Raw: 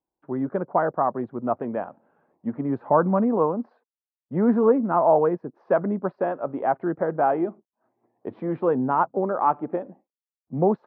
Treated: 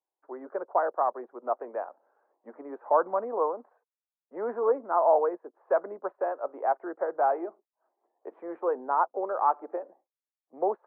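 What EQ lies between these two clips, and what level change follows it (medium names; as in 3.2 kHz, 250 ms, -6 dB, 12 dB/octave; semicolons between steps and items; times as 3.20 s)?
high-pass 340 Hz 24 dB/octave; distance through air 240 m; three-band isolator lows -12 dB, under 430 Hz, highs -23 dB, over 2.1 kHz; -1.5 dB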